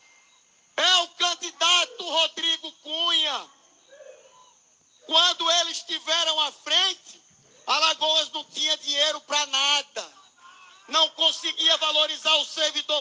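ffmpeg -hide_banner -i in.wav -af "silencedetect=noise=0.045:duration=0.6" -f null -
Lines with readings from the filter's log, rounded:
silence_start: 0.00
silence_end: 0.78 | silence_duration: 0.78
silence_start: 3.39
silence_end: 5.10 | silence_duration: 1.71
silence_start: 6.92
silence_end: 7.68 | silence_duration: 0.75
silence_start: 10.04
silence_end: 10.93 | silence_duration: 0.90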